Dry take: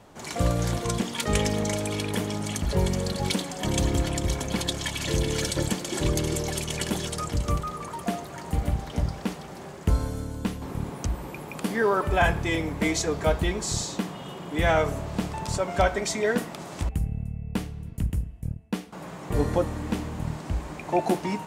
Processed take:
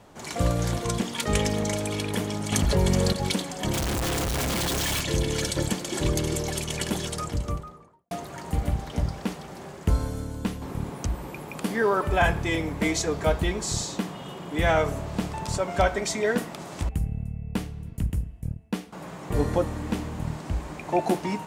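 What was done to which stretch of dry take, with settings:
2.52–3.13 fast leveller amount 70%
3.73–5.01 infinite clipping
7.12–8.11 studio fade out

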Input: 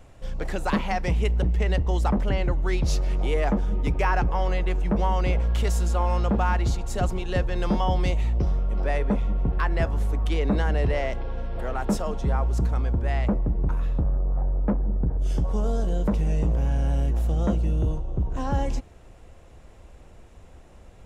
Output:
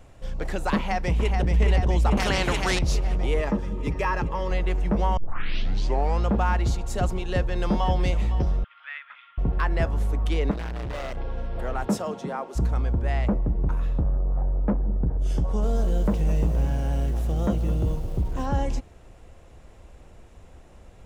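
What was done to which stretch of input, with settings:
0.76–1.48 echo throw 0.43 s, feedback 75%, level -4.5 dB
2.17–2.79 spectral compressor 2:1
3.4–4.51 notch comb 730 Hz
5.17 tape start 1.04 s
7.27–7.91 echo throw 0.51 s, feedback 40%, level -13 dB
8.64–9.38 elliptic band-pass 1300–3400 Hz, stop band 60 dB
10.51–11.17 hard clip -29.5 dBFS
11.84–12.55 HPF 79 Hz -> 300 Hz 24 dB/oct
15.41–18.46 lo-fi delay 0.214 s, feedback 35%, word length 7-bit, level -11 dB

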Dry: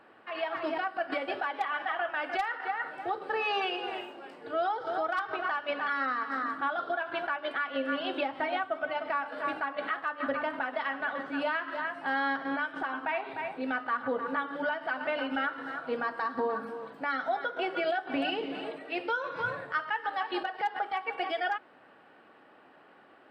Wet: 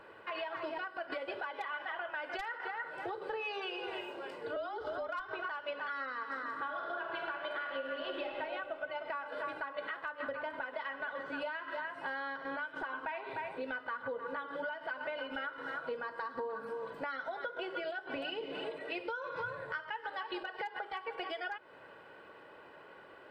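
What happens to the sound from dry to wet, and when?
4.56–5.28 frequency shift -46 Hz
6.46–8.28 reverb throw, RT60 2.3 s, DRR 1 dB
whole clip: low shelf 76 Hz +7.5 dB; comb 2 ms, depth 55%; compressor, threshold -39 dBFS; gain +2 dB

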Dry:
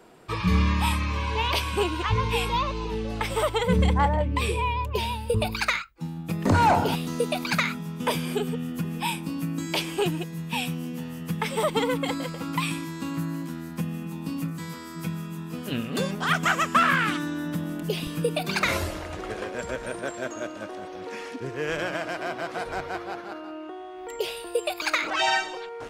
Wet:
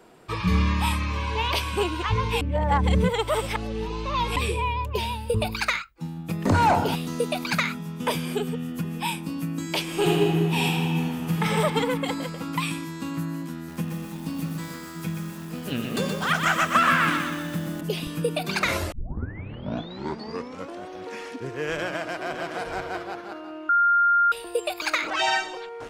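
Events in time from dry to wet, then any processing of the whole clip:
2.41–4.36 reverse
9.84–11.47 reverb throw, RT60 2.1 s, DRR -4.5 dB
13.55–17.81 lo-fi delay 0.124 s, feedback 55%, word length 7-bit, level -4.5 dB
18.92 tape start 1.94 s
21.74–22.51 echo throw 0.56 s, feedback 10%, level -8.5 dB
23.69–24.32 bleep 1400 Hz -16 dBFS

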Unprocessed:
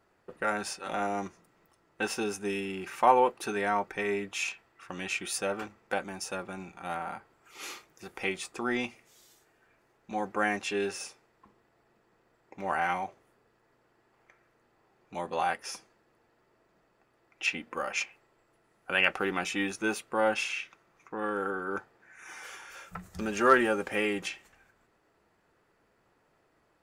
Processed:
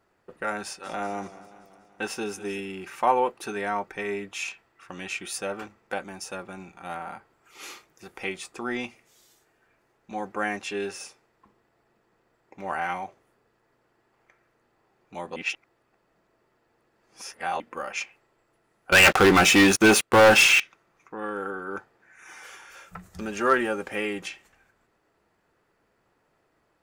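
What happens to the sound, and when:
0.64–2.6 warbling echo 0.191 s, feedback 62%, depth 91 cents, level -16 dB
15.36–17.6 reverse
18.92–20.6 sample leveller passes 5

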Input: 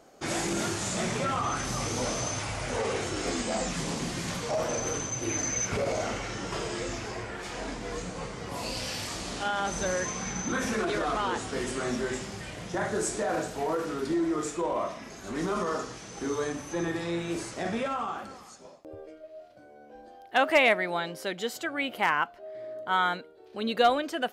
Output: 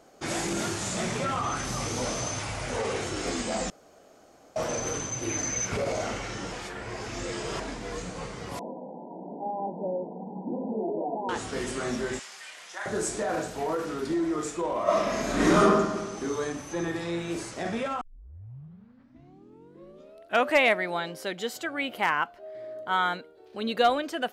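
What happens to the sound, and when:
3.7–4.56 room tone
6.52–7.6 reverse
8.59–11.29 brick-wall FIR band-pass 160–1000 Hz
12.19–12.86 HPF 1200 Hz
14.83–15.59 reverb throw, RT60 1.4 s, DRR -12 dB
18.01 tape start 2.62 s

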